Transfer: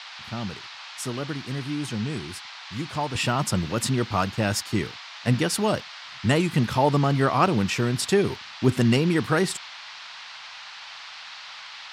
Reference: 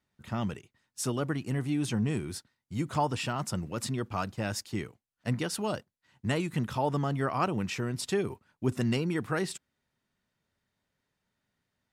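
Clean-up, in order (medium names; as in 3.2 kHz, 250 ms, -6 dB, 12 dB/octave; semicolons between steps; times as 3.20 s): noise print and reduce 30 dB; trim 0 dB, from 3.15 s -8.5 dB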